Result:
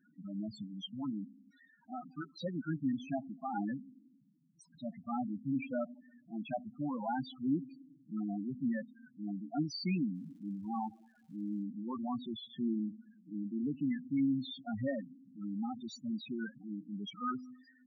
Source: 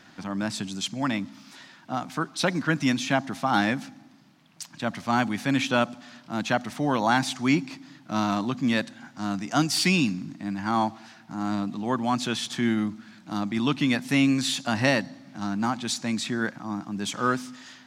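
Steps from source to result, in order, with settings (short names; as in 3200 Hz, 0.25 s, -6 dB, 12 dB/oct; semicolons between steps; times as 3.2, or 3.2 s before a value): loudest bins only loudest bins 4; 10.14–11.62 crackle 380/s -57 dBFS; gain -9 dB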